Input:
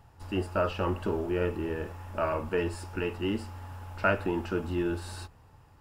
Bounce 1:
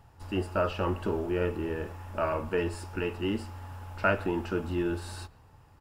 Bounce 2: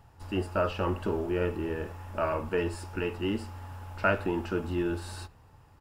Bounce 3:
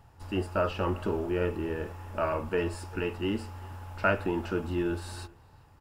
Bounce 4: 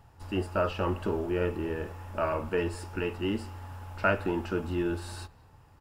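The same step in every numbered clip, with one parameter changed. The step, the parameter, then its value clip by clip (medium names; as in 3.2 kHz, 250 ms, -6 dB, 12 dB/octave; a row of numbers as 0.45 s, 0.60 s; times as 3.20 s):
speakerphone echo, time: 140 ms, 80 ms, 390 ms, 210 ms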